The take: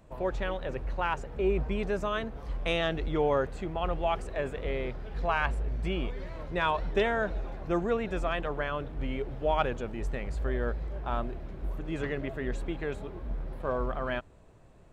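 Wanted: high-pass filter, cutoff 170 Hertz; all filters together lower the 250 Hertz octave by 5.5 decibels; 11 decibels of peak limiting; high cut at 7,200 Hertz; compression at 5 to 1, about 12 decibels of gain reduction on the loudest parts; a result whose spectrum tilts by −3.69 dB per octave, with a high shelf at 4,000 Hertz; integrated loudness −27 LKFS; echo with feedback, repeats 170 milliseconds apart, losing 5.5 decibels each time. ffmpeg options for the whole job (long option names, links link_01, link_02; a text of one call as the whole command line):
ffmpeg -i in.wav -af "highpass=170,lowpass=7200,equalizer=frequency=250:width_type=o:gain=-7,highshelf=frequency=4000:gain=3,acompressor=threshold=-37dB:ratio=5,alimiter=level_in=9.5dB:limit=-24dB:level=0:latency=1,volume=-9.5dB,aecho=1:1:170|340|510|680|850|1020|1190:0.531|0.281|0.149|0.079|0.0419|0.0222|0.0118,volume=16.5dB" out.wav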